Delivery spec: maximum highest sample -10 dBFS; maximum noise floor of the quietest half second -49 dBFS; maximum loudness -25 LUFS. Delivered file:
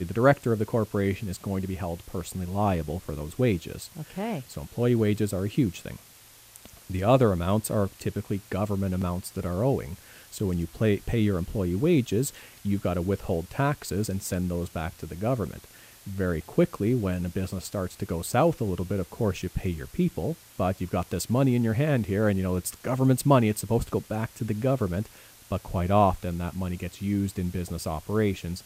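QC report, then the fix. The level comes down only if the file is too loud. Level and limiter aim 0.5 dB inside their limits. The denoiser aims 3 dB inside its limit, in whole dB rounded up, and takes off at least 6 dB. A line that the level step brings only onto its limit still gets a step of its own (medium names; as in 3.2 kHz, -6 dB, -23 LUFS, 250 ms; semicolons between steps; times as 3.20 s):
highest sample -7.5 dBFS: fail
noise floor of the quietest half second -52 dBFS: pass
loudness -27.5 LUFS: pass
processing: peak limiter -10.5 dBFS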